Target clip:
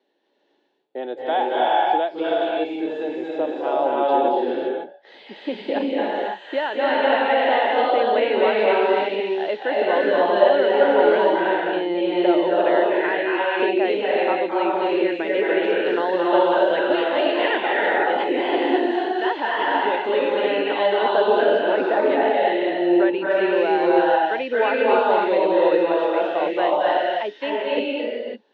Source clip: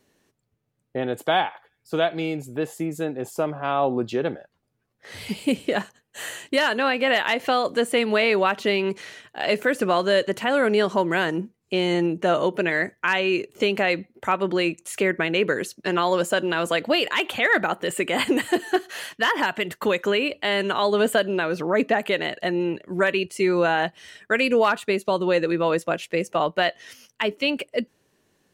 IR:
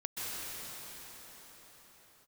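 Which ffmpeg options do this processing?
-filter_complex "[0:a]acrossover=split=2800[a][b];[b]acompressor=threshold=-44dB:ratio=4:attack=1:release=60[c];[a][c]amix=inputs=2:normalize=0,highpass=f=280:w=0.5412,highpass=f=280:w=1.3066,equalizer=f=340:t=q:w=4:g=5,equalizer=f=560:t=q:w=4:g=4,equalizer=f=840:t=q:w=4:g=8,equalizer=f=1.2k:t=q:w=4:g=-7,equalizer=f=2.3k:t=q:w=4:g=-4,equalizer=f=3.6k:t=q:w=4:g=6,lowpass=f=4k:w=0.5412,lowpass=f=4k:w=1.3066[d];[1:a]atrim=start_sample=2205,afade=t=out:st=0.37:d=0.01,atrim=end_sample=16758,asetrate=25137,aresample=44100[e];[d][e]afir=irnorm=-1:irlink=0,volume=-4dB"

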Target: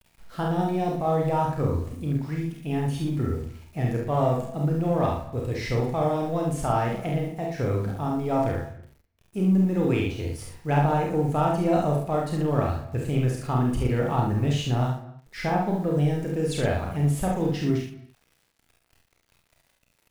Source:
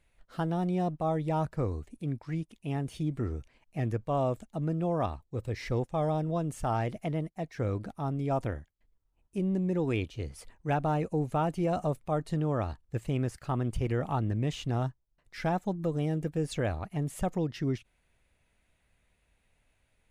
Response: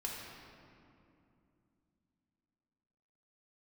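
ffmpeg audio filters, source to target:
-filter_complex "[0:a]asettb=1/sr,asplit=3[a][b][c];[a]atrim=end=15.464[d];[b]atrim=start=15.46:end=15.92,asetpts=PTS-STARTPTS,afade=t=in:d=0.004:c=qsin,afade=t=out:st=0.456:d=0.004:c=qsin,lowpass=2.9k[e];[c]atrim=start=15.916[f];[d][e]acrossfade=d=0.004:c1=hsin:c2=qsin[g];[g][f]acrossfade=d=0.004:c1=qsin:c2=hsin,asplit=2[h][i];[i]asoftclip=type=tanh:threshold=-35dB,volume=-10dB[j];[h][j]amix=inputs=2:normalize=0,acrusher=bits=9:mix=0:aa=0.000001,asplit=2[k][l];[l]adelay=48,volume=-4.5dB[m];[k][m]amix=inputs=2:normalize=0,aecho=1:1:33|69:0.562|0.596,asplit=2[n][o];[1:a]atrim=start_sample=2205,afade=t=out:st=0.32:d=0.01,atrim=end_sample=14553[p];[o][p]afir=irnorm=-1:irlink=0,volume=-9dB[q];[n][q]amix=inputs=2:normalize=0"

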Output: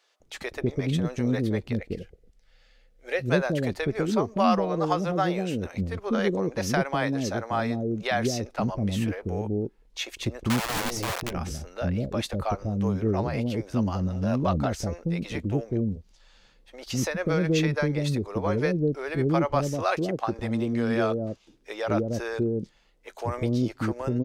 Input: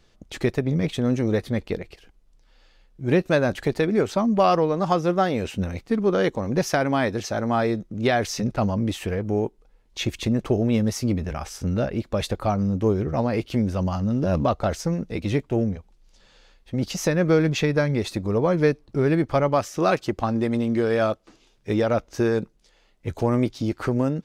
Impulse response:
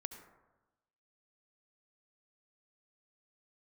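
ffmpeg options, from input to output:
-filter_complex "[0:a]asettb=1/sr,asplit=3[a][b][c];[a]atrim=end=1.804[d];[b]atrim=start=1.8:end=3.27,asetpts=PTS-STARTPTS,afade=t=in:d=0.004:c=qsin,afade=t=out:st=1.466:d=0.004:c=qsin,equalizer=f=315:t=o:w=0.33:g=-10,equalizer=f=500:t=o:w=0.33:g=7,equalizer=f=1k:t=o:w=0.33:g=-11,equalizer=f=2k:t=o:w=0.33:g=5[e];[c]atrim=start=3.266[f];[d][e]acrossfade=d=0.004:c1=hsin:c2=qsin[g];[g][f]acrossfade=d=0.004:c1=qsin:c2=hsin,asplit=3[h][i][j];[h]afade=t=out:st=10.48:d=0.02[k];[i]aeval=exprs='(mod(10.6*val(0)+1,2)-1)/10.6':c=same,afade=t=in:st=10.48:d=0.02,afade=t=out:st=11.29:d=0.02[l];[j]afade=t=in:st=11.29:d=0.02[m];[k][l][m]amix=inputs=3:normalize=0,acrossover=split=490[n][o];[n]adelay=200[p];[p][o]amix=inputs=2:normalize=0,volume=-2.5dB"

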